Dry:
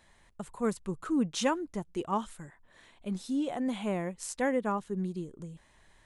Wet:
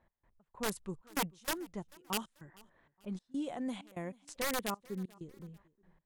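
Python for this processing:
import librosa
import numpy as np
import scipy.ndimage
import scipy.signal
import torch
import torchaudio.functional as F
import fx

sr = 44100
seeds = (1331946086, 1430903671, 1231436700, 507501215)

y = (np.mod(10.0 ** (22.0 / 20.0) * x + 1.0, 2.0) - 1.0) / 10.0 ** (22.0 / 20.0)
y = fx.high_shelf(y, sr, hz=9500.0, db=10.5)
y = fx.env_lowpass(y, sr, base_hz=1200.0, full_db=-26.5)
y = fx.step_gate(y, sr, bpm=193, pattern='x..xx..xxxxx', floor_db=-24.0, edge_ms=4.5)
y = fx.echo_feedback(y, sr, ms=439, feedback_pct=36, wet_db=-24.0)
y = F.gain(torch.from_numpy(y), -6.0).numpy()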